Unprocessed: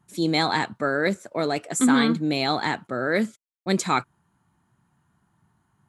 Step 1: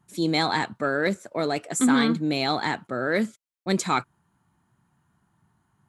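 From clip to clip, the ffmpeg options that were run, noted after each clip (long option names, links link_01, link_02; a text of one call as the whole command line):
ffmpeg -i in.wav -af "acontrast=31,volume=-6dB" out.wav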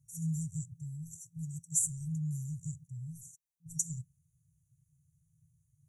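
ffmpeg -i in.wav -af "afftfilt=real='re*(1-between(b*sr/4096,170,5700))':imag='im*(1-between(b*sr/4096,170,5700))':win_size=4096:overlap=0.75" out.wav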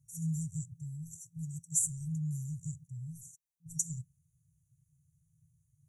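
ffmpeg -i in.wav -af anull out.wav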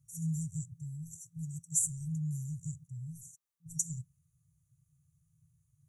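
ffmpeg -i in.wav -af "equalizer=frequency=1200:width=8:gain=11.5" out.wav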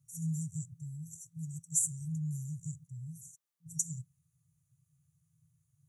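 ffmpeg -i in.wav -af "highpass=100" out.wav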